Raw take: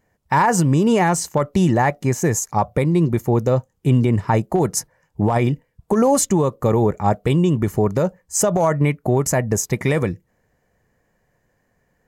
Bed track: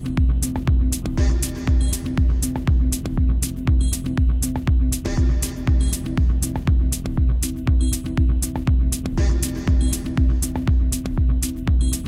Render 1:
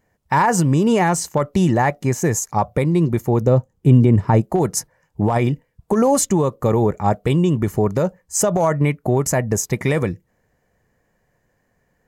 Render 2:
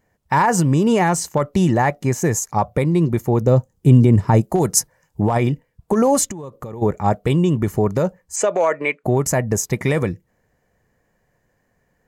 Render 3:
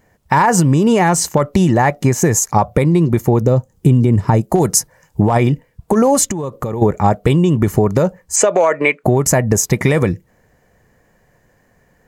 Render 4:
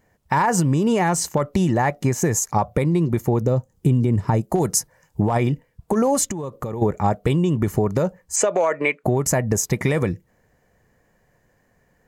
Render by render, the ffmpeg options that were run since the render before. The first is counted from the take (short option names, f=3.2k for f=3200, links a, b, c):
-filter_complex "[0:a]asettb=1/sr,asplit=3[a][b][c];[a]atrim=end=3.414[d];[b]atrim=start=3.41:end=4.41,asetpts=PTS-STARTPTS,afade=t=in:d=0.004:c=qsin,afade=t=out:st=0.996:d=0.004:c=qsin,tiltshelf=f=820:g=4.5[e];[c]atrim=start=4.406[f];[d][e]acrossfade=d=0.004:c1=hsin:c2=qsin[g];[g][f]acrossfade=d=0.004:c1=qsin:c2=hsin"
-filter_complex "[0:a]asettb=1/sr,asplit=3[a][b][c];[a]atrim=end=3.484[d];[b]atrim=start=3.48:end=5.22,asetpts=PTS-STARTPTS,afade=t=in:d=0.004:c=qsin,afade=t=out:st=1.736:d=0.004:c=qsin,bass=f=250:g=1,treble=f=4k:g=7[e];[c]atrim=start=5.216[f];[d][e]acrossfade=d=0.004:c1=hsin:c2=qsin[g];[g][f]acrossfade=d=0.004:c1=qsin:c2=hsin,asplit=3[h][i][j];[h]afade=t=out:st=6.3:d=0.02[k];[i]acompressor=threshold=-27dB:ratio=16:attack=3.2:release=140:knee=1:detection=peak,afade=t=in:st=6.3:d=0.02,afade=t=out:st=6.81:d=0.02[l];[j]afade=t=in:st=6.81:d=0.02[m];[k][l][m]amix=inputs=3:normalize=0,asplit=3[n][o][p];[n]afade=t=out:st=8.35:d=0.02[q];[o]highpass=f=280:w=0.5412,highpass=f=280:w=1.3066,equalizer=f=290:t=q:w=4:g=-6,equalizer=f=520:t=q:w=4:g=4,equalizer=f=780:t=q:w=4:g=-3,equalizer=f=1.7k:t=q:w=4:g=3,equalizer=f=2.4k:t=q:w=4:g=9,equalizer=f=5.4k:t=q:w=4:g=-8,lowpass=f=7.5k:w=0.5412,lowpass=f=7.5k:w=1.3066,afade=t=in:st=8.35:d=0.02,afade=t=out:st=9.03:d=0.02[r];[p]afade=t=in:st=9.03:d=0.02[s];[q][r][s]amix=inputs=3:normalize=0"
-af "acompressor=threshold=-19dB:ratio=6,alimiter=level_in=10dB:limit=-1dB:release=50:level=0:latency=1"
-af "volume=-6.5dB"